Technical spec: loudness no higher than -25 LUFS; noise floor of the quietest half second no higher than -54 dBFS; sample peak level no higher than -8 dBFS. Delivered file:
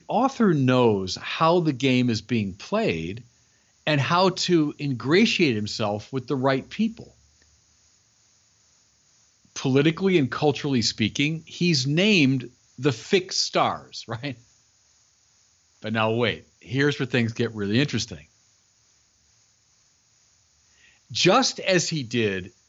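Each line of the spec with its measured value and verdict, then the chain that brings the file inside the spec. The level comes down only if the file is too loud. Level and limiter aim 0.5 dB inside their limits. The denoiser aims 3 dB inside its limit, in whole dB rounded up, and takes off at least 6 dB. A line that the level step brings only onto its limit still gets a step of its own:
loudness -23.0 LUFS: fail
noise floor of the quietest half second -63 dBFS: OK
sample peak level -7.0 dBFS: fail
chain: gain -2.5 dB

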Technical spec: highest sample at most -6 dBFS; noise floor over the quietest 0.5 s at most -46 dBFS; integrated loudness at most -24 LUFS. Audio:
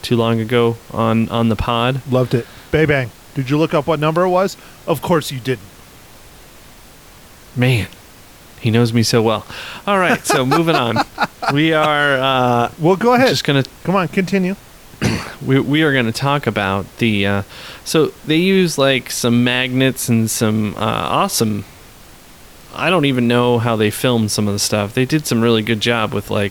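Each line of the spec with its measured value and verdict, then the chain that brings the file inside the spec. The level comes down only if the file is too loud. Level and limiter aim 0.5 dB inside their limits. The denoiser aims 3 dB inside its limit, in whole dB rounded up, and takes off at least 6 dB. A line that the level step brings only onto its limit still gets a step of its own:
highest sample -3.0 dBFS: fail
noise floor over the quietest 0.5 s -41 dBFS: fail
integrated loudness -16.0 LUFS: fail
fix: gain -8.5 dB

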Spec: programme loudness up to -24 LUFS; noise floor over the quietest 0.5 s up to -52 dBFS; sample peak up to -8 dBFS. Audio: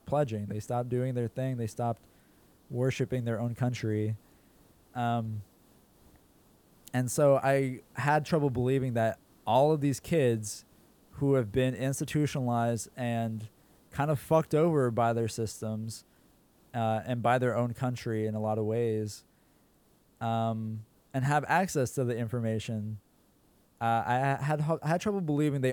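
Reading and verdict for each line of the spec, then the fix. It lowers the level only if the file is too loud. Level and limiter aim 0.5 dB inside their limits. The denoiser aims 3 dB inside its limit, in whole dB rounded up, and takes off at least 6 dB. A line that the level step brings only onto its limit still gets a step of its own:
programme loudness -30.0 LUFS: OK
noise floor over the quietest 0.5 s -65 dBFS: OK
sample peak -13.0 dBFS: OK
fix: none

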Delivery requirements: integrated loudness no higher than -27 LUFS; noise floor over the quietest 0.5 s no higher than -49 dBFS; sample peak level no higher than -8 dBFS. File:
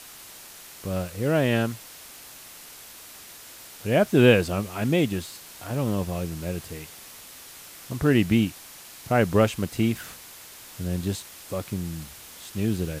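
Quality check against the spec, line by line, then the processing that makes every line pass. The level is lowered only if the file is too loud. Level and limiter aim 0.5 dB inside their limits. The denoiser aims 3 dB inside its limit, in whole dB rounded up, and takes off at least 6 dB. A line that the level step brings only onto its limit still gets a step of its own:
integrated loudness -25.0 LUFS: fail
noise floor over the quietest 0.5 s -45 dBFS: fail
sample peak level -5.0 dBFS: fail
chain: denoiser 6 dB, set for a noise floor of -45 dBFS; gain -2.5 dB; limiter -8.5 dBFS

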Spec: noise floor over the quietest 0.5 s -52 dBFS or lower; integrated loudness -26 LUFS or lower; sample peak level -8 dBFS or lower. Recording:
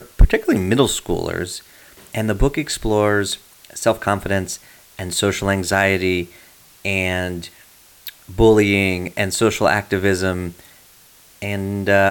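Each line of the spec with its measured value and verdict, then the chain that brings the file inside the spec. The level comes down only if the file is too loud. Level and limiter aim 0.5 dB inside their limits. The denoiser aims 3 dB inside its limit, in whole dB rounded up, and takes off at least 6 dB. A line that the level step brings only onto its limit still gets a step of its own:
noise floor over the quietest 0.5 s -49 dBFS: fail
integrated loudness -19.0 LUFS: fail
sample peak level -2.5 dBFS: fail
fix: gain -7.5 dB

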